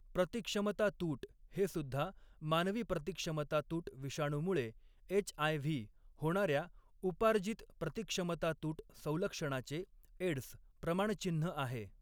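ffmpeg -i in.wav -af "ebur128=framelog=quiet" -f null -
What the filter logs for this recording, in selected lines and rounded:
Integrated loudness:
  I:         -38.5 LUFS
  Threshold: -48.6 LUFS
Loudness range:
  LRA:         2.4 LU
  Threshold: -58.6 LUFS
  LRA low:   -40.0 LUFS
  LRA high:  -37.6 LUFS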